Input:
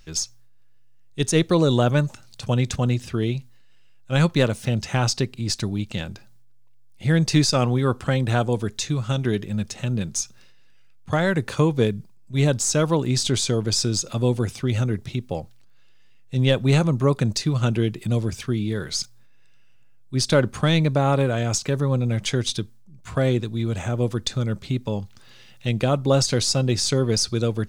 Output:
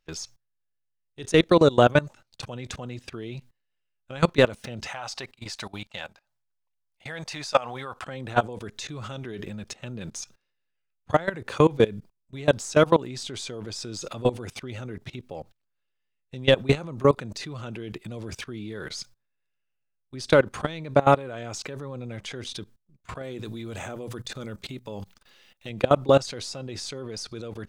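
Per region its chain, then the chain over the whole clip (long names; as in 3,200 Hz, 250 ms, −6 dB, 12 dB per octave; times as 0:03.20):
0:04.87–0:08.06: low shelf with overshoot 510 Hz −10 dB, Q 1.5 + phase shifter 2 Hz, delay 4.8 ms, feedback 21%
0:23.23–0:25.70: high-shelf EQ 8,100 Hz +12 dB + mains-hum notches 60/120/180 Hz
whole clip: noise gate −38 dBFS, range −10 dB; bass and treble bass −9 dB, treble −7 dB; output level in coarse steps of 21 dB; level +6.5 dB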